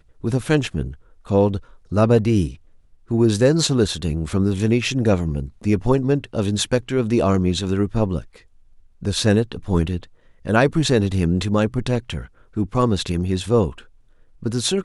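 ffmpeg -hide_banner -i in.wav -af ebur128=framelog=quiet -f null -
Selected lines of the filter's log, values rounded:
Integrated loudness:
  I:         -20.5 LUFS
  Threshold: -31.1 LUFS
Loudness range:
  LRA:         2.7 LU
  Threshold: -40.9 LUFS
  LRA low:   -22.3 LUFS
  LRA high:  -19.6 LUFS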